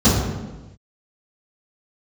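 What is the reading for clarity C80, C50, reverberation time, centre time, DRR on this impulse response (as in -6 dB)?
3.0 dB, 0.5 dB, not exponential, 78 ms, -16.0 dB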